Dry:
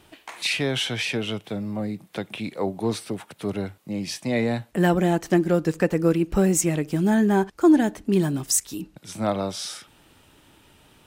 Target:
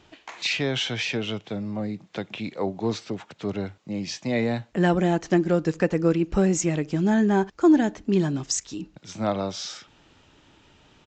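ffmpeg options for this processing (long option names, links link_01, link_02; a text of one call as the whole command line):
ffmpeg -i in.wav -af "aresample=16000,aresample=44100,volume=-1dB" out.wav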